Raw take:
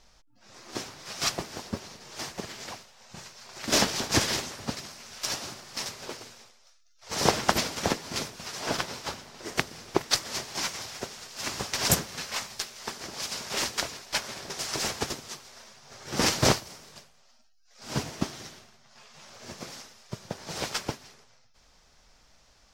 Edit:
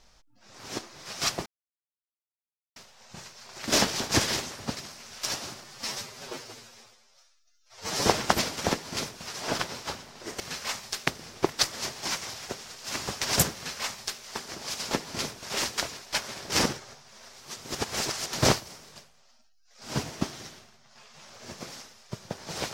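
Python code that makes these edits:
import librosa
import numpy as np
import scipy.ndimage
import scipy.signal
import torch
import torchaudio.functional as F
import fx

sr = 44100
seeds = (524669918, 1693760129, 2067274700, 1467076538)

y = fx.edit(x, sr, fx.reverse_span(start_s=0.59, length_s=0.36),
    fx.silence(start_s=1.46, length_s=1.3),
    fx.stretch_span(start_s=5.64, length_s=1.62, factor=1.5),
    fx.duplicate(start_s=7.88, length_s=0.52, to_s=13.43),
    fx.duplicate(start_s=12.07, length_s=0.67, to_s=9.59),
    fx.reverse_span(start_s=14.52, length_s=1.81), tone=tone)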